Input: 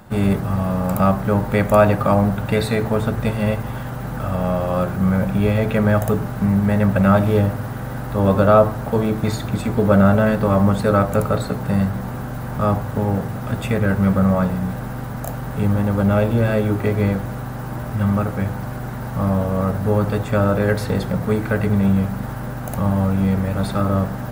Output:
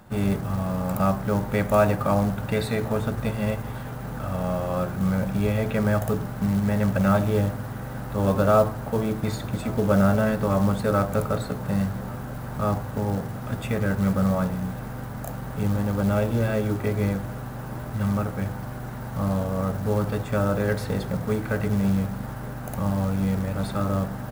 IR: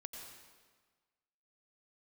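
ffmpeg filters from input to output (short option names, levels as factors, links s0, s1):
-af "acrusher=bits=6:mode=log:mix=0:aa=0.000001,aecho=1:1:1139:0.0708,volume=0.501"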